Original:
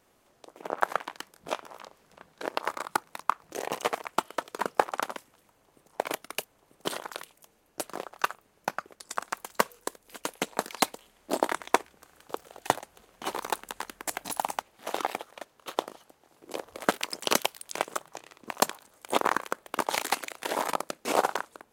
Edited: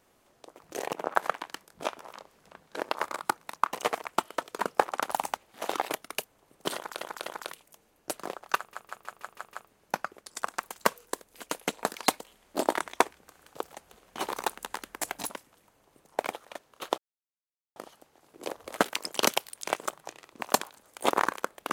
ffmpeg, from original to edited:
-filter_complex "[0:a]asplit=18[a][b][c][d][e][f][g][h][i][j][k][l][m][n][o][p][q][r];[a]atrim=end=0.592[s];[b]atrim=start=3.388:end=3.732[t];[c]atrim=start=0.588:end=3.392[u];[d]atrim=start=3.728:end=5.112[v];[e]atrim=start=14.358:end=15.142[w];[f]atrim=start=6.088:end=7.212[x];[g]atrim=start=6.958:end=7.212[y];[h]atrim=start=6.958:end=8.432[z];[i]atrim=start=8.268:end=8.432[aa];[j]atrim=start=8.268:end=8.432[ab];[k]atrim=start=8.268:end=8.432[ac];[l]atrim=start=8.268:end=8.432[ad];[m]atrim=start=8.268:end=8.432[ae];[n]atrim=start=8.268:end=12.472[af];[o]atrim=start=12.788:end=14.362[ag];[p]atrim=start=5.108:end=6.092[ah];[q]atrim=start=15.138:end=15.84,asetpts=PTS-STARTPTS,afade=t=out:st=0.698:d=0.004:c=hsin,apad=pad_dur=0.78[ai];[r]atrim=start=15.84,asetpts=PTS-STARTPTS,afade=t=in:d=0.004:c=hsin[aj];[s][t]acrossfade=d=0.004:c1=hsin:c2=hsin[ak];[ak][u]acrossfade=d=0.004:c1=hsin:c2=hsin[al];[al][v]acrossfade=d=0.004:c1=hsin:c2=hsin[am];[am][w]acrossfade=d=0.004:c1=hsin:c2=hsin[an];[an][x]acrossfade=d=0.004:c1=hsin:c2=hsin[ao];[ao][y]acrossfade=d=0.004:c1=hsin:c2=hsin[ap];[ap][z]acrossfade=d=0.004:c1=hsin:c2=hsin[aq];[aq][aa]acrossfade=d=0.004:c1=hsin:c2=hsin[ar];[ar][ab]acrossfade=d=0.004:c1=hsin:c2=hsin[as];[as][ac]acrossfade=d=0.004:c1=hsin:c2=hsin[at];[at][ad]acrossfade=d=0.004:c1=hsin:c2=hsin[au];[au][ae]acrossfade=d=0.004:c1=hsin:c2=hsin[av];[av][af]acrossfade=d=0.004:c1=hsin:c2=hsin[aw];[aw][ag]acrossfade=d=0.004:c1=hsin:c2=hsin[ax];[ax][ah]acrossfade=d=0.004:c1=hsin:c2=hsin[ay];[ai][aj]concat=n=2:v=0:a=1[az];[ay][az]acrossfade=d=0.004:c1=hsin:c2=hsin"

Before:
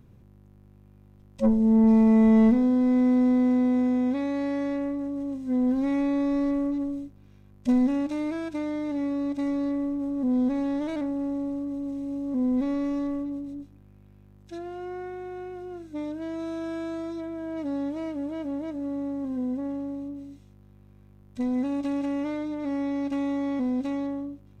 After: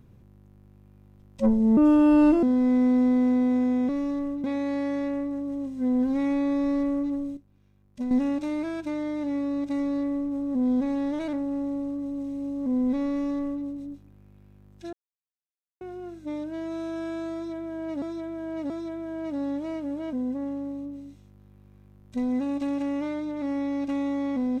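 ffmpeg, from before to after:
-filter_complex "[0:a]asplit=12[a][b][c][d][e][f][g][h][i][j][k][l];[a]atrim=end=1.774[m];[b]atrim=start=1.77:end=2.66,asetpts=PTS-STARTPTS,asetrate=59535,aresample=44100,atrim=end_sample=29073,asetpts=PTS-STARTPTS[n];[c]atrim=start=2.656:end=4.122[o];[d]atrim=start=12.768:end=13.322[p];[e]atrim=start=4.118:end=7.052[q];[f]atrim=start=7.048:end=7.792,asetpts=PTS-STARTPTS,volume=-9dB[r];[g]atrim=start=7.788:end=14.61,asetpts=PTS-STARTPTS,afade=t=out:st=6.818:d=0.004:c=hsin[s];[h]atrim=start=14.61:end=15.49,asetpts=PTS-STARTPTS,volume=0[t];[i]atrim=start=15.49:end=17.702,asetpts=PTS-STARTPTS,afade=t=in:d=0.004:c=hsin[u];[j]atrim=start=17.018:end=17.702[v];[k]atrim=start=17.018:end=18.452[w];[l]atrim=start=19.358[x];[m][n]acrossfade=d=0.004:c1=hsin:c2=hsin[y];[y][o]acrossfade=d=0.004:c1=hsin:c2=hsin[z];[z][p]acrossfade=d=0.004:c1=hsin:c2=hsin[aa];[aa][q]acrossfade=d=0.004:c1=hsin:c2=hsin[ab];[ab][r]acrossfade=d=0.004:c1=hsin:c2=hsin[ac];[s][t][u]concat=n=3:v=0:a=1[ad];[ac][ad]acrossfade=d=0.004:c1=hsin:c2=hsin[ae];[ae][v]acrossfade=d=0.004:c1=hsin:c2=hsin[af];[af][w]acrossfade=d=0.004:c1=hsin:c2=hsin[ag];[ag][x]acrossfade=d=0.004:c1=hsin:c2=hsin"

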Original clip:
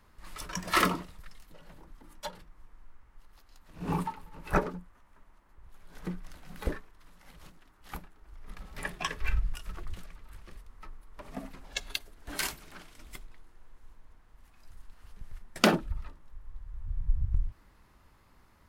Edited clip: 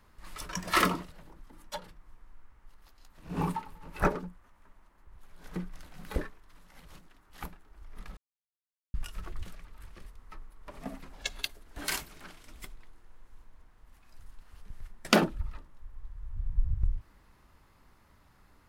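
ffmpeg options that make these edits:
-filter_complex "[0:a]asplit=4[a][b][c][d];[a]atrim=end=1.122[e];[b]atrim=start=1.628:end=8.68,asetpts=PTS-STARTPTS,afade=t=out:st=7.048:d=0.004:c=hsin[f];[c]atrim=start=8.68:end=9.45,asetpts=PTS-STARTPTS,volume=0[g];[d]atrim=start=9.45,asetpts=PTS-STARTPTS,afade=t=in:d=0.004:c=hsin[h];[f][g][h]concat=n=3:v=0:a=1[i];[e][i]acrossfade=d=0.004:c1=hsin:c2=hsin"

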